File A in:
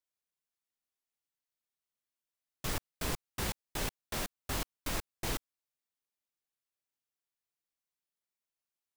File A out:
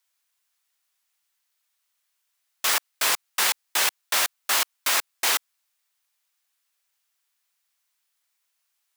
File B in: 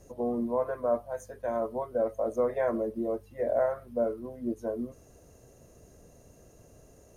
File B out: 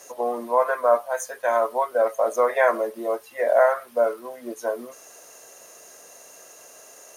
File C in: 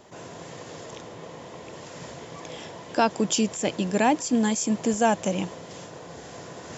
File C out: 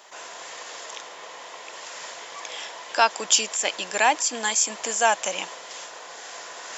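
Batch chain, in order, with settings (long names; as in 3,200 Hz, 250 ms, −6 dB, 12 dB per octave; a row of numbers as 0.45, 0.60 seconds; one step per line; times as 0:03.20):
high-pass filter 1,000 Hz 12 dB per octave
loudness normalisation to −23 LKFS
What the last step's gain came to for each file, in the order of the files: +17.0, +18.0, +8.0 decibels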